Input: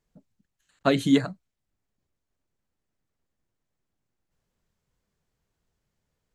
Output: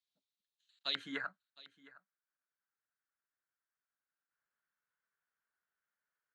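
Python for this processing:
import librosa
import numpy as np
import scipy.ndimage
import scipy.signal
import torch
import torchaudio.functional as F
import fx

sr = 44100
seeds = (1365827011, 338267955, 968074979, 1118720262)

y = fx.bandpass_q(x, sr, hz=fx.steps((0.0, 3800.0), (0.95, 1500.0)), q=4.6)
y = y + 10.0 ** (-20.5 / 20.0) * np.pad(y, (int(711 * sr / 1000.0), 0))[:len(y)]
y = y * 10.0 ** (2.0 / 20.0)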